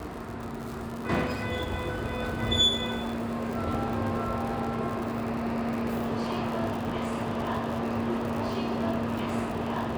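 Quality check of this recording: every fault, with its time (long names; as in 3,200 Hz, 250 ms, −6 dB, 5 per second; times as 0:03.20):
surface crackle 79 per second −33 dBFS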